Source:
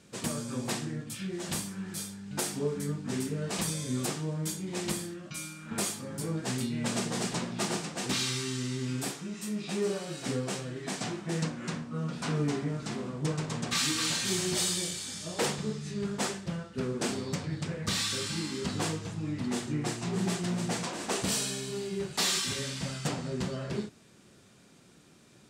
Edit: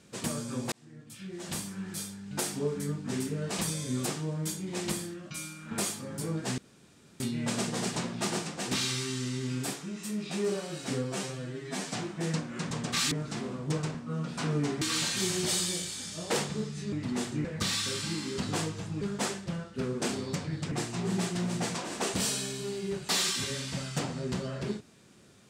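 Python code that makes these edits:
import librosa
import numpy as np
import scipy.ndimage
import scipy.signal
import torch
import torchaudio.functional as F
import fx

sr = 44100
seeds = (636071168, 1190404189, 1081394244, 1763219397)

y = fx.edit(x, sr, fx.fade_in_span(start_s=0.72, length_s=1.06),
    fx.insert_room_tone(at_s=6.58, length_s=0.62),
    fx.stretch_span(start_s=10.42, length_s=0.59, factor=1.5),
    fx.swap(start_s=11.79, length_s=0.87, other_s=13.49, other_length_s=0.41),
    fx.swap(start_s=16.01, length_s=1.7, other_s=19.28, other_length_s=0.52), tone=tone)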